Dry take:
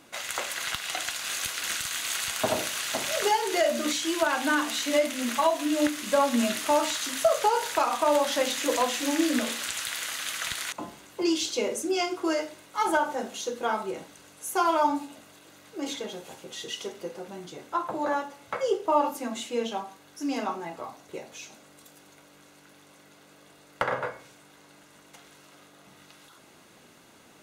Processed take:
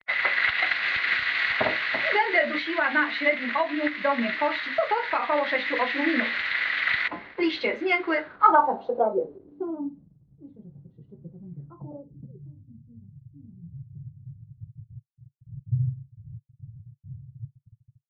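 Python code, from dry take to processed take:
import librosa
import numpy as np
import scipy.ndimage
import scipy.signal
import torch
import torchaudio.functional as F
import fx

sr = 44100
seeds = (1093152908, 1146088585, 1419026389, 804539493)

y = fx.delta_hold(x, sr, step_db=-44.0)
y = scipy.signal.sosfilt(scipy.signal.butter(2, 47.0, 'highpass', fs=sr, output='sos'), y)
y = fx.high_shelf(y, sr, hz=4900.0, db=-10.0)
y = fx.rider(y, sr, range_db=3, speed_s=2.0)
y = fx.filter_sweep_lowpass(y, sr, from_hz=4200.0, to_hz=110.0, start_s=17.18, end_s=19.0, q=5.5)
y = fx.stretch_vocoder(y, sr, factor=0.66)
y = fx.filter_sweep_lowpass(y, sr, from_hz=2000.0, to_hz=140.0, start_s=8.12, end_s=10.16, q=5.5)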